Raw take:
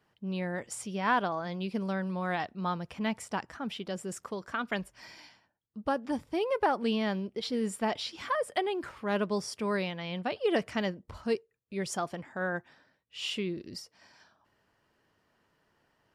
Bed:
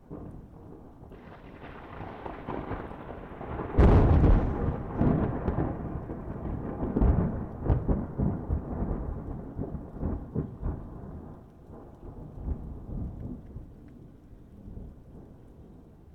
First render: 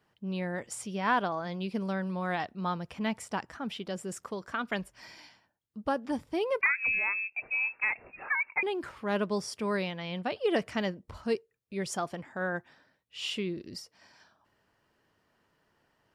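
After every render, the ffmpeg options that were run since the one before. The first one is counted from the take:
-filter_complex "[0:a]asettb=1/sr,asplit=3[a][b][c];[a]atrim=end=6.614[d];[b]atrim=start=6.61:end=8.63,asetpts=PTS-STARTPTS,afade=t=in:d=0.004:c=qsin,afade=t=out:st=2.016:d=0.004:c=qsin,lowpass=f=2.4k:t=q:w=0.5098,lowpass=f=2.4k:t=q:w=0.6013,lowpass=f=2.4k:t=q:w=0.9,lowpass=f=2.4k:t=q:w=2.563,afreqshift=-2800[e];[c]atrim=start=8.626[f];[d][e]acrossfade=d=0.004:c1=hsin:c2=qsin[g];[g][f]acrossfade=d=0.004:c1=qsin:c2=hsin"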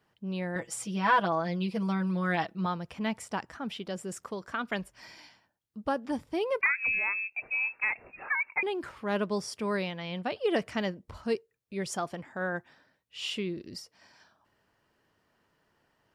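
-filter_complex "[0:a]asettb=1/sr,asplit=3[a][b][c];[a]atrim=end=0.554[d];[b]atrim=start=0.55:end=2.66,asetpts=PTS-STARTPTS,afade=t=in:d=0.004:c=qsin,afade=t=out:st=2.106:d=0.004:c=qsin,aecho=1:1:6.1:0.91,atrim=end_sample=93051[e];[c]atrim=start=2.656[f];[d][e]acrossfade=d=0.004:c1=hsin:c2=qsin[g];[g][f]acrossfade=d=0.004:c1=qsin:c2=hsin"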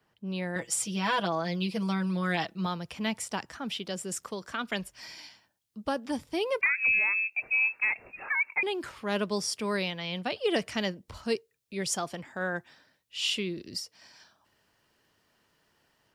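-filter_complex "[0:a]acrossover=split=140|690|2600[a][b][c][d];[c]alimiter=level_in=3dB:limit=-24dB:level=0:latency=1,volume=-3dB[e];[d]dynaudnorm=f=230:g=3:m=8dB[f];[a][b][e][f]amix=inputs=4:normalize=0"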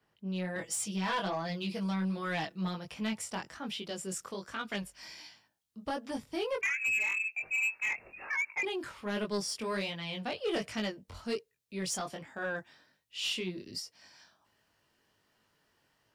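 -af "flanger=delay=18.5:depth=3.5:speed=1.3,asoftclip=type=tanh:threshold=-25.5dB"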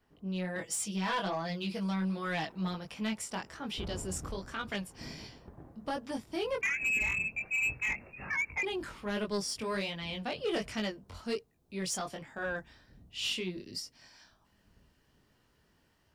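-filter_complex "[1:a]volume=-22.5dB[a];[0:a][a]amix=inputs=2:normalize=0"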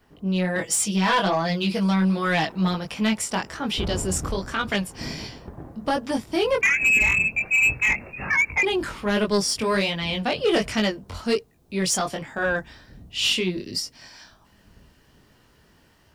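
-af "volume=12dB"

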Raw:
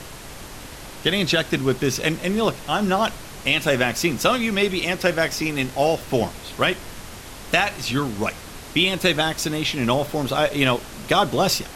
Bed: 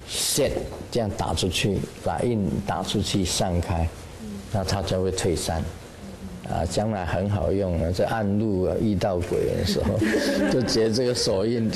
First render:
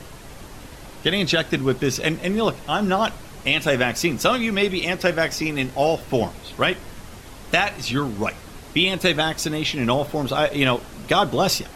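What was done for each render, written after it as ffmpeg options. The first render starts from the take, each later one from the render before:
-af "afftdn=nr=6:nf=-39"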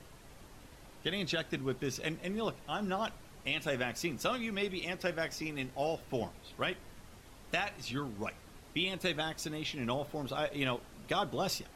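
-af "volume=-14.5dB"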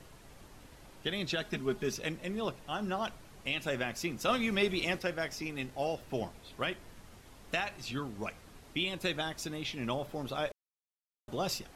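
-filter_complex "[0:a]asettb=1/sr,asplit=3[a][b][c];[a]atrim=end=1.414[d];[b]atrim=start=1.41:end=1.95,asetpts=PTS-STARTPTS,afade=t=in:d=0.004:c=qsin,afade=t=out:st=0.536:d=0.004:c=qsin,aecho=1:1:4.8:0.65,atrim=end_sample=23814[e];[c]atrim=start=1.946[f];[d][e]acrossfade=d=0.004:c1=hsin:c2=qsin[g];[g][f]acrossfade=d=0.004:c1=qsin:c2=hsin,asettb=1/sr,asplit=3[h][i][j];[h]atrim=end=4.284[k];[i]atrim=start=4.28:end=4.99,asetpts=PTS-STARTPTS,afade=t=in:d=0.004:c=qsin,afade=t=out:st=0.706:d=0.004:c=qsin,acontrast=34[l];[j]atrim=start=4.986[m];[k][l]acrossfade=d=0.004:c1=hsin:c2=qsin[n];[n][m]acrossfade=d=0.004:c1=qsin:c2=hsin,asplit=3[o][p][q];[o]atrim=end=10.52,asetpts=PTS-STARTPTS,afade=t=out:st=10.516:d=0.004:c=hsin[r];[p]atrim=start=10.52:end=11.28,asetpts=PTS-STARTPTS,volume=0[s];[q]atrim=start=11.28,asetpts=PTS-STARTPTS,afade=t=in:d=0.004:c=hsin[t];[r][s][t]concat=n=3:v=0:a=1"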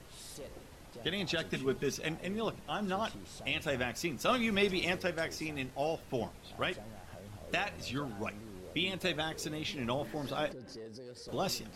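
-filter_complex "[1:a]volume=-25.5dB[a];[0:a][a]amix=inputs=2:normalize=0"

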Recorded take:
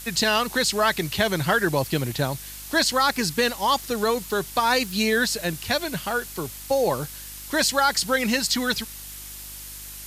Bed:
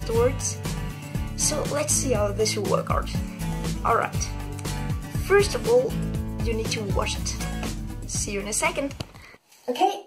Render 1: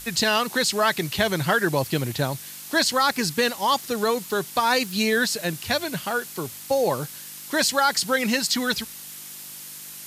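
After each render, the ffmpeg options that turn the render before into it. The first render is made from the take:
-af "bandreject=f=50:t=h:w=4,bandreject=f=100:t=h:w=4"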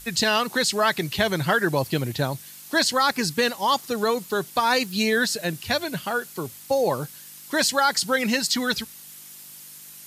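-af "afftdn=nr=6:nf=-40"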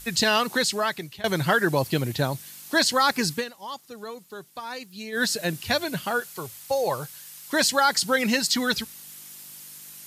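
-filter_complex "[0:a]asettb=1/sr,asplit=3[a][b][c];[a]atrim=end=6.204[d];[b]atrim=start=6.2:end=7.53,asetpts=PTS-STARTPTS,afade=t=in:d=0.004:c=qsin,afade=t=out:st=1.326:d=0.004:c=qsin,equalizer=f=250:t=o:w=1.3:g=-11[e];[c]atrim=start=7.526[f];[d][e]acrossfade=d=0.004:c1=hsin:c2=qsin[g];[g][f]acrossfade=d=0.004:c1=qsin:c2=hsin,asplit=4[h][i][j][k];[h]atrim=end=1.24,asetpts=PTS-STARTPTS,afade=t=out:st=0.54:d=0.7:silence=0.0794328[l];[i]atrim=start=1.24:end=3.45,asetpts=PTS-STARTPTS,afade=t=in:d=0.004:c=hsin:silence=0.0794328,afade=t=out:st=2.09:d=0.12:silence=0.188365[m];[j]atrim=start=3.45:end=5.12,asetpts=PTS-STARTPTS,volume=-14.5dB[n];[k]atrim=start=5.12,asetpts=PTS-STARTPTS,afade=t=in:d=0.12:silence=0.188365[o];[l][m][n][o]concat=n=4:v=0:a=1"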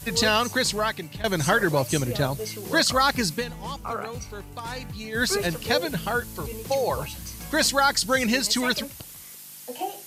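-filter_complex "[1:a]volume=-10dB[a];[0:a][a]amix=inputs=2:normalize=0"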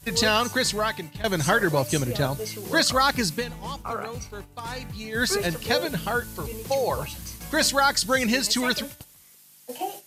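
-af "agate=range=-10dB:threshold=-38dB:ratio=16:detection=peak,bandreject=f=295.4:t=h:w=4,bandreject=f=590.8:t=h:w=4,bandreject=f=886.2:t=h:w=4,bandreject=f=1.1816k:t=h:w=4,bandreject=f=1.477k:t=h:w=4,bandreject=f=1.7724k:t=h:w=4,bandreject=f=2.0678k:t=h:w=4,bandreject=f=2.3632k:t=h:w=4,bandreject=f=2.6586k:t=h:w=4,bandreject=f=2.954k:t=h:w=4,bandreject=f=3.2494k:t=h:w=4,bandreject=f=3.5448k:t=h:w=4,bandreject=f=3.8402k:t=h:w=4"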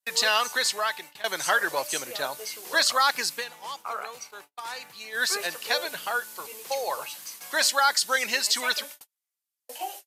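-af "agate=range=-35dB:threshold=-41dB:ratio=16:detection=peak,highpass=730"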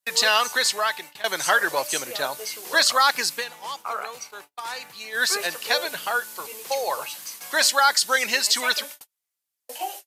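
-af "volume=3.5dB"

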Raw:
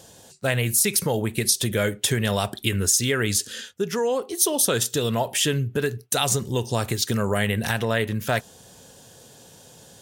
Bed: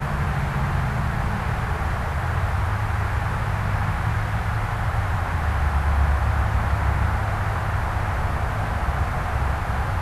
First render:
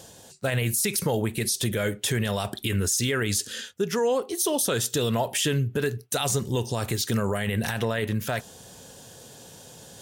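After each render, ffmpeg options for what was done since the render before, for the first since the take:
-af "areverse,acompressor=mode=upward:threshold=-41dB:ratio=2.5,areverse,alimiter=limit=-15.5dB:level=0:latency=1:release=18"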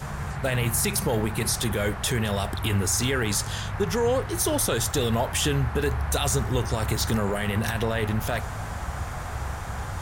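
-filter_complex "[1:a]volume=-8.5dB[a];[0:a][a]amix=inputs=2:normalize=0"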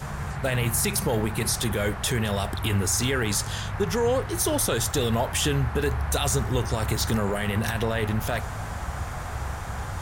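-af anull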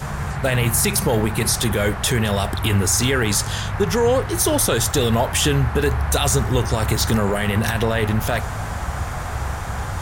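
-af "volume=6dB"

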